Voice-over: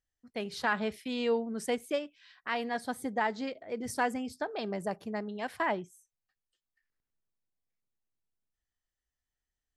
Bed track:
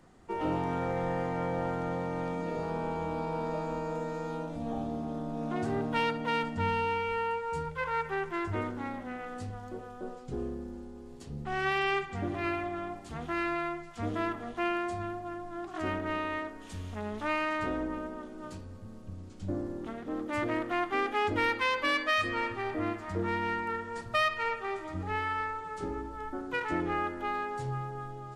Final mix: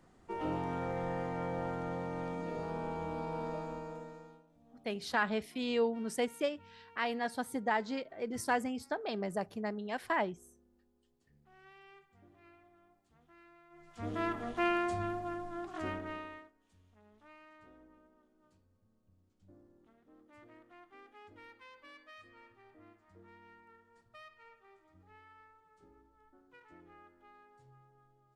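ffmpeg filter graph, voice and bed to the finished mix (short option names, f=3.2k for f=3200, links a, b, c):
-filter_complex "[0:a]adelay=4500,volume=-1.5dB[a];[1:a]volume=24dB,afade=t=out:st=3.47:d=0.96:silence=0.0630957,afade=t=in:st=13.7:d=0.73:silence=0.0354813,afade=t=out:st=15.27:d=1.25:silence=0.0446684[b];[a][b]amix=inputs=2:normalize=0"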